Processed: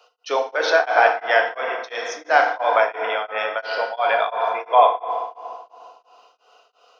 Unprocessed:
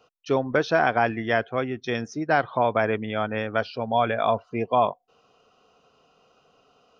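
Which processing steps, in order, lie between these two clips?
high-pass filter 550 Hz 24 dB per octave
parametric band 4,400 Hz +2.5 dB
feedback delay network reverb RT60 2.2 s, low-frequency decay 1.4×, high-frequency decay 0.6×, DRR 1 dB
tremolo along a rectified sine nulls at 2.9 Hz
level +6.5 dB

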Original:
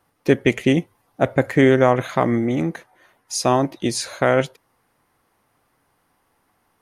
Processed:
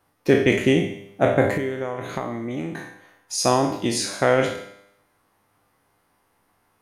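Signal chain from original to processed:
peak hold with a decay on every bin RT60 0.56 s
0:01.57–0:03.38: downward compressor 12 to 1, threshold −22 dBFS, peak gain reduction 14 dB
tuned comb filter 100 Hz, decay 0.86 s, harmonics all, mix 70%
level +6.5 dB

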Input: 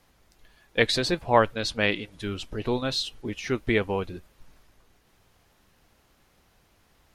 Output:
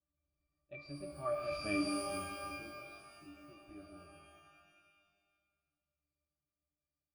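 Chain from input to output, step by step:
source passing by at 0:01.68, 29 m/s, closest 5 metres
resonances in every octave D, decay 0.27 s
reverb with rising layers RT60 1.6 s, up +12 semitones, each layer −2 dB, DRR 5 dB
level +6 dB

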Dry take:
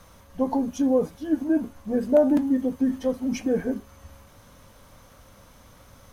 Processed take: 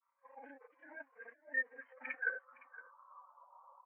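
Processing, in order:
running median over 25 samples
high-pass filter 200 Hz 12 dB per octave
three-way crossover with the lows and the highs turned down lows −23 dB, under 550 Hz, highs −12 dB, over 3,300 Hz
compressor whose output falls as the input rises −42 dBFS, ratio −1
granular cloud 100 ms, pitch spread up and down by 0 semitones
band-pass filter sweep 2,100 Hz → 970 Hz, 0:02.87–0:05.62
phase-vocoder stretch with locked phases 0.63×
high-frequency loss of the air 66 metres
single-tap delay 513 ms −7.5 dB
every bin expanded away from the loudest bin 2.5 to 1
level +15.5 dB

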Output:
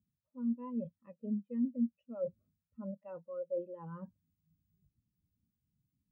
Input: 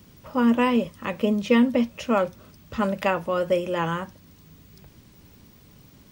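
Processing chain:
reversed playback
downward compressor 10 to 1, threshold −34 dBFS, peak gain reduction 20.5 dB
reversed playback
every bin expanded away from the loudest bin 2.5 to 1
level +1 dB

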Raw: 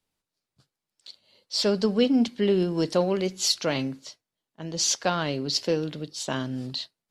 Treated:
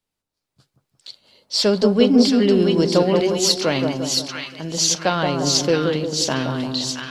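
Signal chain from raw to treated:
automatic gain control gain up to 8.5 dB
on a send: echo with a time of its own for lows and highs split 1,200 Hz, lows 175 ms, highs 671 ms, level −3.5 dB
on the sum: level −1.5 dB

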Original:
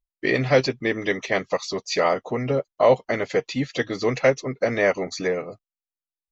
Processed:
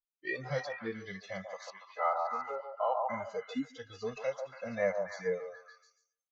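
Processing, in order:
noise reduction from a noise print of the clip's start 20 dB
0:01.70–0:03.10: loudspeaker in its box 450–2,700 Hz, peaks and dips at 530 Hz −7 dB, 830 Hz +8 dB, 1,300 Hz +6 dB, 2,300 Hz −4 dB
harmonic and percussive parts rebalanced percussive −14 dB
echo through a band-pass that steps 142 ms, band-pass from 810 Hz, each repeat 0.7 octaves, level −1.5 dB
level −6.5 dB

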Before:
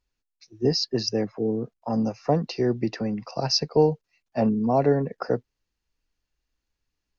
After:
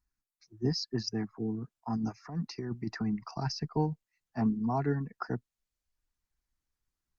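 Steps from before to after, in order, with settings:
reverb reduction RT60 0.57 s
0:01.96–0:03.66: compressor whose output falls as the input rises −27 dBFS, ratio −1
phaser with its sweep stopped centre 1,300 Hz, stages 4
level −2.5 dB
Opus 48 kbit/s 48,000 Hz

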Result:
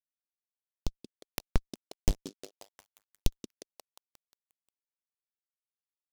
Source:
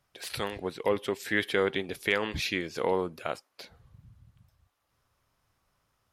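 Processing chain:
hold until the input has moved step −28 dBFS
Bessel high-pass filter 230 Hz, order 8
notch filter 380 Hz, Q 12
comparator with hysteresis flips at −16 dBFS
transient designer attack +11 dB, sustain −11 dB
treble cut that deepens with the level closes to 760 Hz, closed at −33.5 dBFS
echo through a band-pass that steps 178 ms, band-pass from 310 Hz, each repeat 0.7 octaves, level −5 dB
short delay modulated by noise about 4,600 Hz, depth 0.2 ms
level +6 dB

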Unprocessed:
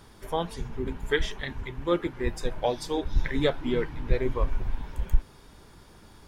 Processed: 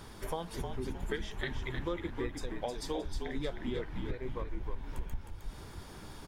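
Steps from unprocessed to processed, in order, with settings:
downward compressor 12 to 1, threshold −36 dBFS, peak gain reduction 23.5 dB
on a send: echo with shifted repeats 311 ms, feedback 32%, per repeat −51 Hz, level −5.5 dB
on the sum: level +3 dB

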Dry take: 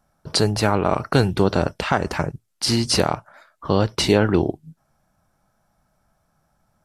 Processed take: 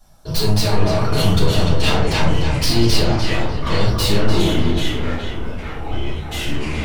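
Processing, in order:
stylus tracing distortion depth 0.15 ms
0:01.63–0:03.71: treble cut that deepens with the level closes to 2,600 Hz, closed at −14.5 dBFS
high shelf with overshoot 2,600 Hz +7.5 dB, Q 1.5
brickwall limiter −14.5 dBFS, peak gain reduction 16.5 dB
soft clipping −26 dBFS, distortion −8 dB
feedback echo with a low-pass in the loop 297 ms, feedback 35%, low-pass 4,400 Hz, level −5 dB
convolution reverb RT60 0.35 s, pre-delay 3 ms, DRR −8 dB
delay with pitch and tempo change per echo 680 ms, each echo −6 semitones, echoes 3, each echo −6 dB

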